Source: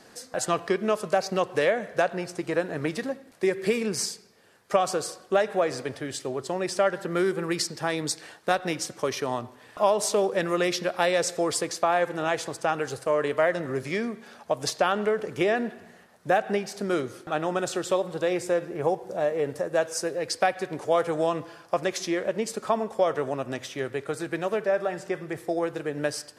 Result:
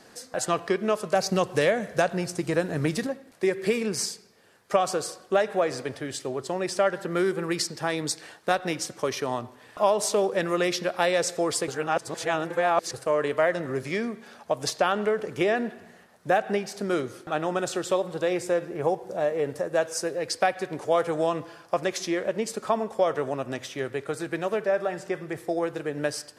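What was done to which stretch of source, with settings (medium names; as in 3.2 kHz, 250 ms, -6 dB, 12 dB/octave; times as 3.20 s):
1.15–3.07 s: tone controls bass +8 dB, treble +7 dB
11.68–12.94 s: reverse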